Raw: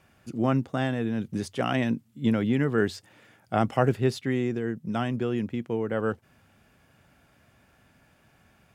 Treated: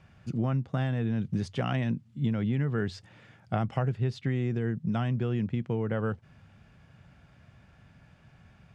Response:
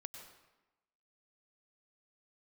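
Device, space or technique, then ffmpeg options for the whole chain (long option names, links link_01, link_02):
jukebox: -af "lowpass=5500,lowshelf=frequency=210:width_type=q:width=1.5:gain=7,acompressor=threshold=-25dB:ratio=6"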